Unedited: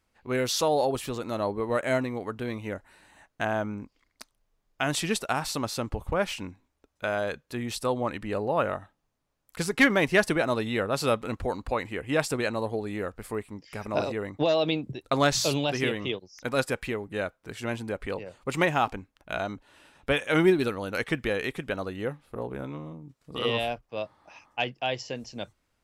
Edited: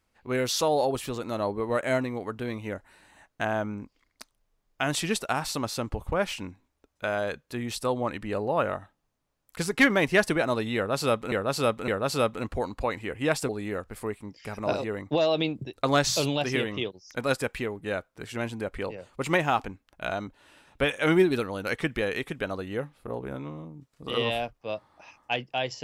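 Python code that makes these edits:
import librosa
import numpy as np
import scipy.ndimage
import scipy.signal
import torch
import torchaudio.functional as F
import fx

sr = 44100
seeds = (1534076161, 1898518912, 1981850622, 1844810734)

y = fx.edit(x, sr, fx.repeat(start_s=10.76, length_s=0.56, count=3),
    fx.cut(start_s=12.37, length_s=0.4), tone=tone)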